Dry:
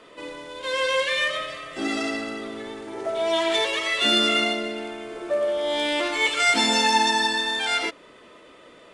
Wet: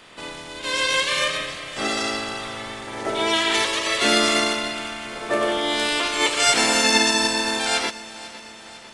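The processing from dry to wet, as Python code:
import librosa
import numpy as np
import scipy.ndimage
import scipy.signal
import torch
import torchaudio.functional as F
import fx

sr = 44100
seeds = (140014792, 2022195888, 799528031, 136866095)

y = fx.spec_clip(x, sr, under_db=17)
y = fx.echo_feedback(y, sr, ms=500, feedback_pct=57, wet_db=-18.0)
y = F.gain(torch.from_numpy(y), 2.0).numpy()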